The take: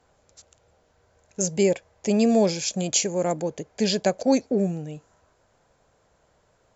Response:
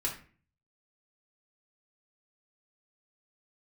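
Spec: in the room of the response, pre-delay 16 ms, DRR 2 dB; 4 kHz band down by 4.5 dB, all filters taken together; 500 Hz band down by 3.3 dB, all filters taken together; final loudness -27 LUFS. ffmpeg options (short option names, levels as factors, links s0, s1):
-filter_complex "[0:a]equalizer=f=500:t=o:g=-4,equalizer=f=4000:t=o:g=-6,asplit=2[s0][s1];[1:a]atrim=start_sample=2205,adelay=16[s2];[s1][s2]afir=irnorm=-1:irlink=0,volume=0.501[s3];[s0][s3]amix=inputs=2:normalize=0,volume=0.708"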